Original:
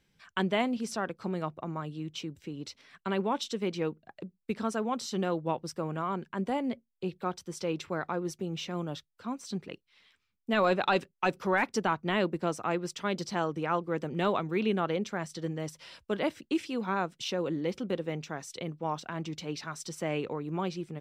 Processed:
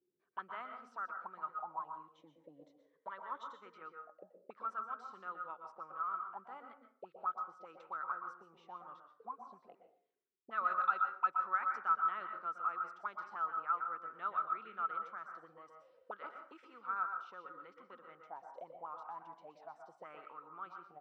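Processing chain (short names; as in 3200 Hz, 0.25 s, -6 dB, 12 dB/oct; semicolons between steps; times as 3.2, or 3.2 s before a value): auto-wah 360–1300 Hz, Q 19, up, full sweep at -29.5 dBFS; 2.14–3.6 ripple EQ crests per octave 1.1, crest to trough 11 dB; reverb RT60 0.50 s, pre-delay 0.112 s, DRR 5 dB; gain +6 dB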